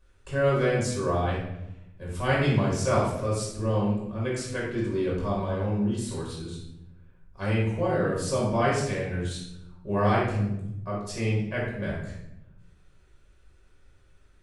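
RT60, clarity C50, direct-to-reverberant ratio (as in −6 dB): 0.85 s, 1.0 dB, −6.0 dB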